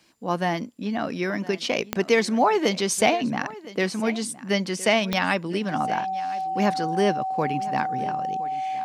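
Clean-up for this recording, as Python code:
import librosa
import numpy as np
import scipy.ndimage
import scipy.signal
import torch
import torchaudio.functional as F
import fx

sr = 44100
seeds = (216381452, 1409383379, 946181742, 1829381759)

y = fx.fix_declick_ar(x, sr, threshold=10.0)
y = fx.notch(y, sr, hz=760.0, q=30.0)
y = fx.fix_echo_inverse(y, sr, delay_ms=1014, level_db=-18.0)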